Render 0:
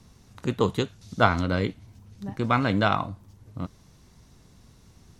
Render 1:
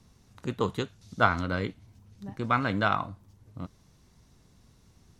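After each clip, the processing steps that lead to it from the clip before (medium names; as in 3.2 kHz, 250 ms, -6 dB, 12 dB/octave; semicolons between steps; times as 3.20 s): dynamic bell 1.4 kHz, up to +5 dB, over -38 dBFS, Q 1.4; trim -5.5 dB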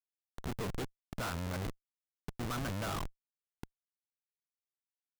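gain riding within 5 dB 2 s; Schmitt trigger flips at -33 dBFS; trim -4 dB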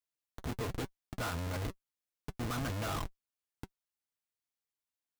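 comb of notches 190 Hz; trim +2 dB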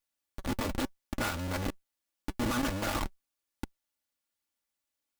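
comb filter that takes the minimum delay 3.5 ms; trim +7 dB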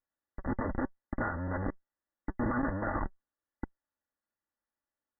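brick-wall FIR low-pass 2 kHz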